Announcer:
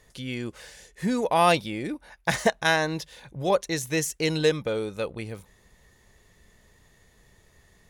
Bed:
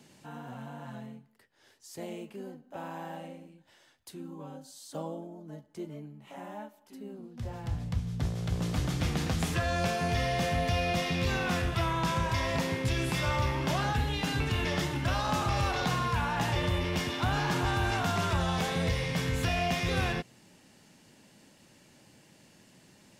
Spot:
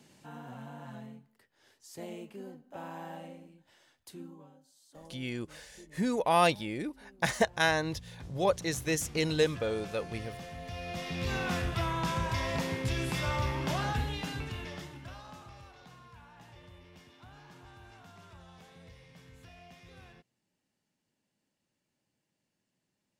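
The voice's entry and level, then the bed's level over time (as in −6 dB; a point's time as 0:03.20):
4.95 s, −4.5 dB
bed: 0:04.22 −2.5 dB
0:04.55 −15 dB
0:10.57 −15 dB
0:11.37 −2.5 dB
0:13.98 −2.5 dB
0:15.73 −24.5 dB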